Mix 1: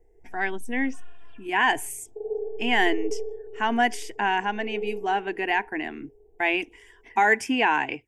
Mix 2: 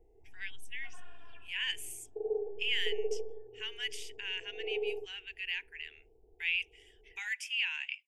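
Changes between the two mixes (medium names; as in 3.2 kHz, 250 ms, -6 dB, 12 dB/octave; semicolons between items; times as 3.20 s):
speech: add ladder high-pass 2.4 kHz, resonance 50%; first sound: send off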